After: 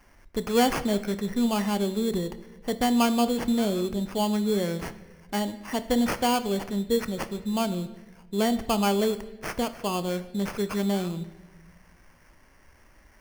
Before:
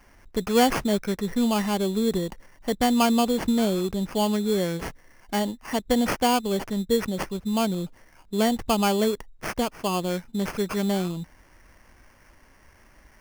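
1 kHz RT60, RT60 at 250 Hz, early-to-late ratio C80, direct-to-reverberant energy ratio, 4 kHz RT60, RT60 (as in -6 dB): 1.0 s, 1.6 s, 15.5 dB, 11.5 dB, 0.95 s, 1.2 s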